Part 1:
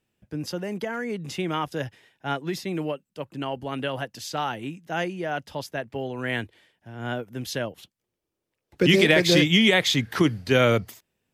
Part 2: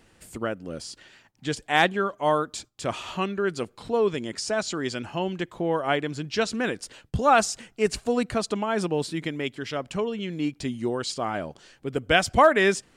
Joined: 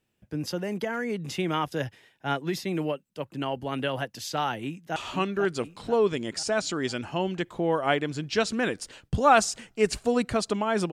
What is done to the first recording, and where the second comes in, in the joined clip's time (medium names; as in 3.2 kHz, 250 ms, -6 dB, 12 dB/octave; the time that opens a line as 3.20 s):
part 1
4.64–4.96 s: echo throw 490 ms, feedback 50%, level -7 dB
4.96 s: go over to part 2 from 2.97 s